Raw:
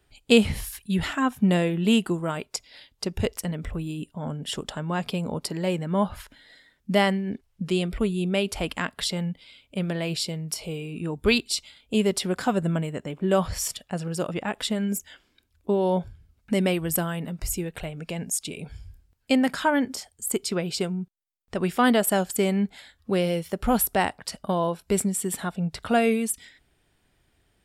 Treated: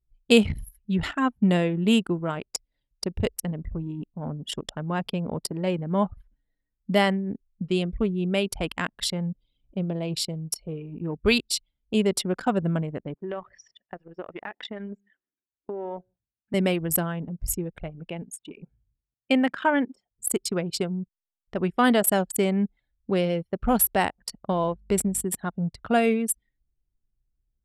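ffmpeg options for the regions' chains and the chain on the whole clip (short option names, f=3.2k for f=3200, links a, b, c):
-filter_complex "[0:a]asettb=1/sr,asplit=3[a][b][c];[a]atrim=end=9.274[d];[b]atrim=start=9.27:end=10.12,asetpts=PTS-STARTPTS,afade=t=in:d=0.004:c=qsin,afade=t=out:st=0.846:d=0.004:c=qsin,equalizer=f=1.7k:t=o:w=0.87:g=-11.5,bandreject=f=50:t=h:w=6,bandreject=f=100:t=h:w=6,acompressor=mode=upward:threshold=-36dB:ratio=2.5:attack=3.2:release=140:knee=2.83:detection=peak[e];[c]atrim=start=10.116[f];[d][e]acrossfade=d=0.004:c1=hsin:c2=qsin[g];[g][f]acrossfade=d=0.004:c1=qsin:c2=hsin,asettb=1/sr,asplit=3[h][i][j];[h]atrim=end=13.144[k];[i]atrim=start=13.14:end=16.54,asetpts=PTS-STARTPTS,afade=t=in:d=0.004:c=qsin,afade=t=out:st=3.396:d=0.004:c=qsin,highpass=330,equalizer=f=520:t=q:w=4:g=-4,equalizer=f=1.9k:t=q:w=4:g=7,equalizer=f=4.2k:t=q:w=4:g=-7,lowpass=f=5k:w=0.5412,lowpass=f=5k:w=1.3066,acompressor=threshold=-28dB:ratio=4:attack=3.2:release=140:knee=1:detection=peak,aecho=1:1:147:0.106,atrim=end_sample=149940[l];[j]atrim=start=16.536[m];[k][l]acrossfade=d=0.004:c1=hsin:c2=qsin[n];[n][m]acrossfade=d=0.004:c1=qsin:c2=hsin,asettb=1/sr,asplit=3[o][p][q];[o]atrim=end=18.094[r];[p]atrim=start=18.09:end=20.12,asetpts=PTS-STARTPTS,afade=t=in:d=0.004:c=qsin,afade=t=out:st=2.026:d=0.004:c=qsin,highpass=170,highshelf=f=3.8k:t=q:w=1.5:g=-6.5[s];[q]atrim=start=20.116[t];[r][s]acrossfade=d=0.004:c1=hsin:c2=qsin[u];[u][t]acrossfade=d=0.004:c1=qsin:c2=hsin,asettb=1/sr,asplit=3[v][w][x];[v]atrim=end=24.524[y];[w]atrim=start=24.52:end=25.24,asetpts=PTS-STARTPTS,afade=t=in:d=0.004:c=qsin,afade=t=out:st=0.716:d=0.004:c=qsin,aeval=exprs='val(0)+0.00631*(sin(2*PI*50*n/s)+sin(2*PI*2*50*n/s)/2+sin(2*PI*3*50*n/s)/3+sin(2*PI*4*50*n/s)/4+sin(2*PI*5*50*n/s)/5)':c=same,aeval=exprs='sgn(val(0))*max(abs(val(0))-0.00178,0)':c=same[z];[x]atrim=start=25.236[aa];[y][z]acrossfade=d=0.004:c1=hsin:c2=qsin[ab];[ab][aa]acrossfade=d=0.004:c1=qsin:c2=hsin,anlmdn=39.8,equalizer=f=11k:t=o:w=0.23:g=4.5"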